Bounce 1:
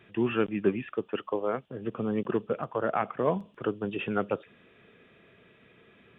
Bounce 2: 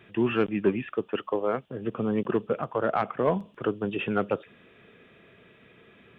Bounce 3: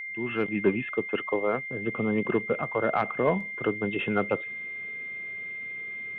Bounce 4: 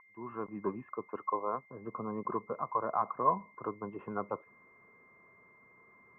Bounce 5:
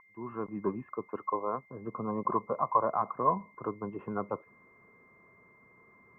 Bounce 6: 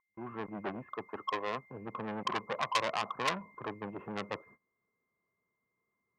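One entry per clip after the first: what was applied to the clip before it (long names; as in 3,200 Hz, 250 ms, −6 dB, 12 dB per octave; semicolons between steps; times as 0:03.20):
soft clipping −14 dBFS, distortion −23 dB; level +3 dB
fade in at the beginning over 0.62 s; steady tone 2,100 Hz −34 dBFS
transistor ladder low-pass 1,100 Hz, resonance 85%
gain on a spectral selection 0:02.08–0:02.88, 500–1,200 Hz +6 dB; low-shelf EQ 420 Hz +5.5 dB
noise gate −54 dBFS, range −24 dB; saturating transformer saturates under 4,000 Hz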